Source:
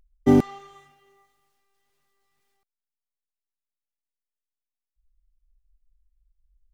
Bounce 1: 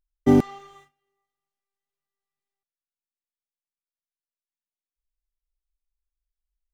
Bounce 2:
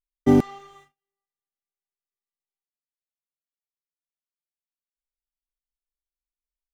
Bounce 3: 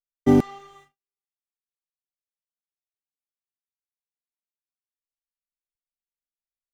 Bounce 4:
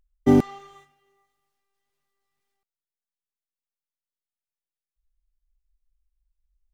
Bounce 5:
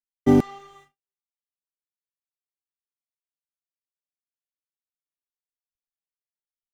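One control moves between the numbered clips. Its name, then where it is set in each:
noise gate, range: −19, −32, −47, −7, −59 decibels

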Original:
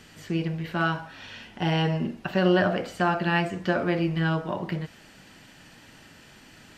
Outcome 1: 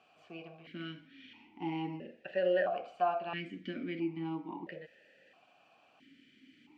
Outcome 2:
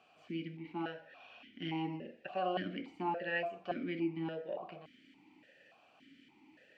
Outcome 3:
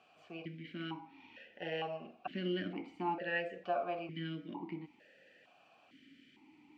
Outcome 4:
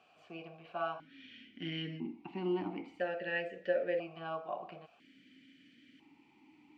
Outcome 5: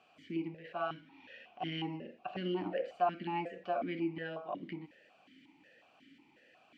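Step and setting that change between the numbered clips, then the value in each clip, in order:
formant filter that steps through the vowels, speed: 1.5, 3.5, 2.2, 1, 5.5 Hertz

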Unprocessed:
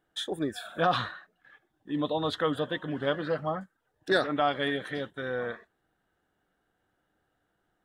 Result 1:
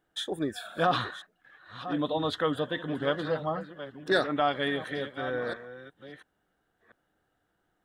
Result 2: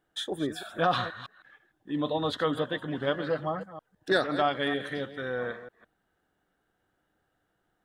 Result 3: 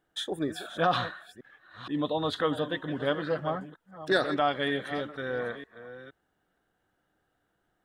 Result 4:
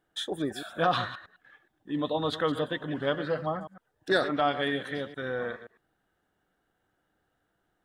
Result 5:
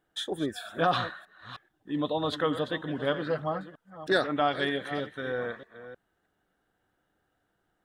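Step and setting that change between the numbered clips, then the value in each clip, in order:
delay that plays each chunk backwards, delay time: 692, 158, 470, 105, 313 milliseconds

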